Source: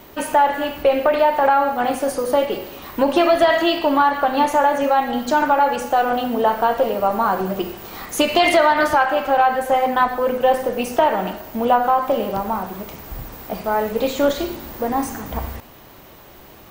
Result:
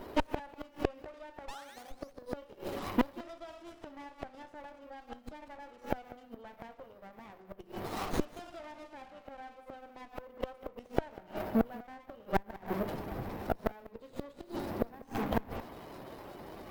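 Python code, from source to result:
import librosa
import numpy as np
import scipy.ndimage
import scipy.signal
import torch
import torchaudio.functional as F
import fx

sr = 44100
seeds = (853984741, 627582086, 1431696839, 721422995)

p1 = fx.highpass(x, sr, hz=260.0, slope=6)
p2 = fx.peak_eq(p1, sr, hz=4400.0, db=7.5, octaves=0.61)
p3 = fx.spec_topn(p2, sr, count=64)
p4 = fx.gate_flip(p3, sr, shuts_db=-15.0, range_db=-32)
p5 = fx.spec_paint(p4, sr, seeds[0], shape='rise', start_s=1.48, length_s=0.44, low_hz=1700.0, high_hz=6600.0, level_db=-36.0)
p6 = p5 + fx.echo_single(p5, sr, ms=194, db=-19.5, dry=0)
p7 = fx.running_max(p6, sr, window=17)
y = F.gain(torch.from_numpy(p7), 1.0).numpy()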